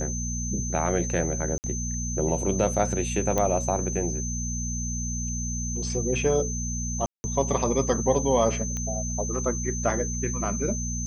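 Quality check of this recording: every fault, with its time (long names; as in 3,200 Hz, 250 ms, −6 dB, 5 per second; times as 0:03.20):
mains hum 60 Hz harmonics 4 −31 dBFS
whistle 6,200 Hz −32 dBFS
0:01.58–0:01.64: drop-out 59 ms
0:03.38: click −11 dBFS
0:07.06–0:07.24: drop-out 180 ms
0:08.77: click −19 dBFS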